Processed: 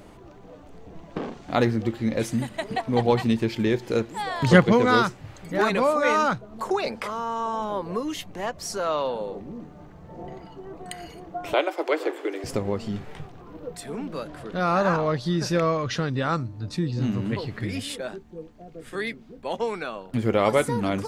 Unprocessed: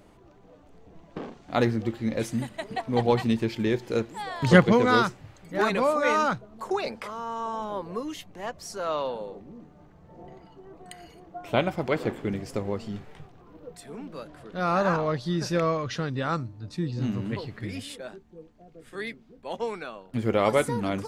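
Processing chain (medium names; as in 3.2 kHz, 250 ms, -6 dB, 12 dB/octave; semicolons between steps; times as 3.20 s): 11.53–12.44 s: steep high-pass 300 Hz 72 dB/octave; in parallel at +3 dB: compression, threshold -36 dBFS, peak gain reduction 23 dB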